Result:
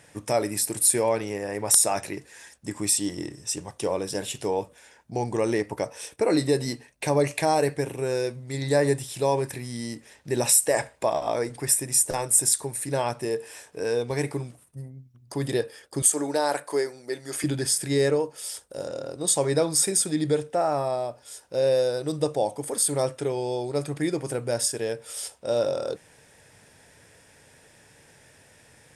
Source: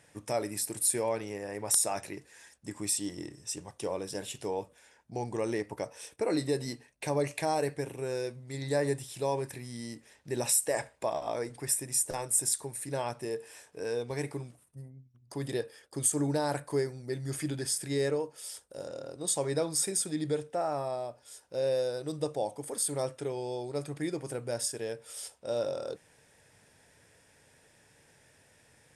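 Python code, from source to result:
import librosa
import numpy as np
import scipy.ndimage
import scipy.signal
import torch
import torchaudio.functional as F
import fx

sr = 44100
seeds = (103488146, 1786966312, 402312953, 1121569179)

y = fx.highpass(x, sr, hz=400.0, slope=12, at=(16.02, 17.44))
y = y * 10.0 ** (7.5 / 20.0)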